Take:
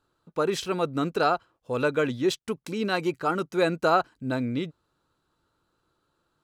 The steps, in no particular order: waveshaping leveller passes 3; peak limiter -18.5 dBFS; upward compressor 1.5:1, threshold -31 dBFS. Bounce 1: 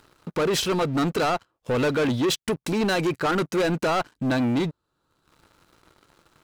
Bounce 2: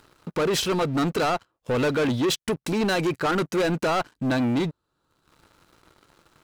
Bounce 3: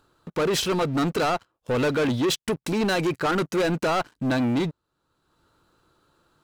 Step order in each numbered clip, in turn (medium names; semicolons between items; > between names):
peak limiter > upward compressor > waveshaping leveller; upward compressor > peak limiter > waveshaping leveller; peak limiter > waveshaping leveller > upward compressor